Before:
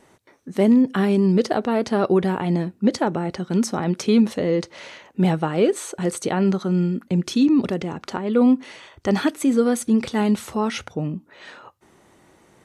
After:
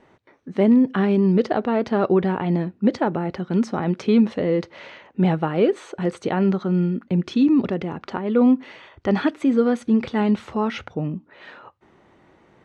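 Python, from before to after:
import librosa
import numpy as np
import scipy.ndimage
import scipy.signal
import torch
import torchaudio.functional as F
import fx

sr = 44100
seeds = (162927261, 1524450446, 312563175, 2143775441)

y = scipy.signal.sosfilt(scipy.signal.butter(2, 3100.0, 'lowpass', fs=sr, output='sos'), x)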